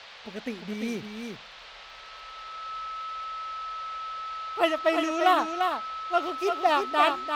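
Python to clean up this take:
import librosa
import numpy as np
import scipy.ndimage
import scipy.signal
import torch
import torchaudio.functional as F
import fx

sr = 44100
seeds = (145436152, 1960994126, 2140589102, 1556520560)

y = fx.fix_declick_ar(x, sr, threshold=6.5)
y = fx.notch(y, sr, hz=1300.0, q=30.0)
y = fx.noise_reduce(y, sr, print_start_s=1.4, print_end_s=1.9, reduce_db=26.0)
y = fx.fix_echo_inverse(y, sr, delay_ms=346, level_db=-5.5)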